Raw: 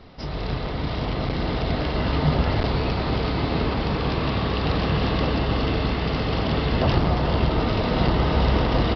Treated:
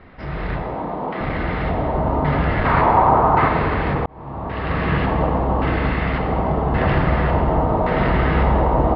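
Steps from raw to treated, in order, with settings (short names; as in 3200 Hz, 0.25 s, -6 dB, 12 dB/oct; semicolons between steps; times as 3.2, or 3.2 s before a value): 0.62–1.21 steep high-pass 180 Hz; 2.65–3.48 bell 1100 Hz +12.5 dB 1.5 oct; LFO low-pass square 0.89 Hz 900–1900 Hz; plate-style reverb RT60 1.7 s, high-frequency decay 0.95×, DRR 2 dB; 4.06–4.92 fade in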